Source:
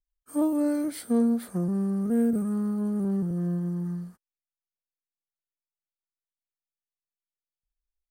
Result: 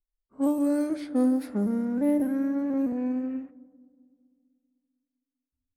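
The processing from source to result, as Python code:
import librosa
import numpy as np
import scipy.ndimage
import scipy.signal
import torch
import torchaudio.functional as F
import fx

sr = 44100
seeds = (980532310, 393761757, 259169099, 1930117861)

y = fx.speed_glide(x, sr, from_pct=85, to_pct=196)
y = fx.rev_fdn(y, sr, rt60_s=2.3, lf_ratio=1.25, hf_ratio=1.0, size_ms=30.0, drr_db=15.5)
y = fx.env_lowpass(y, sr, base_hz=650.0, full_db=-21.5)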